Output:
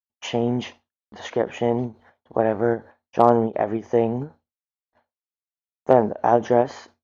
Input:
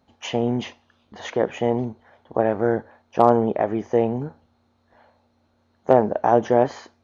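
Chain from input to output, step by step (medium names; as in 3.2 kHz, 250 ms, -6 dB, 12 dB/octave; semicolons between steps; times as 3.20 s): gate -54 dBFS, range -59 dB; endings held to a fixed fall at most 270 dB/s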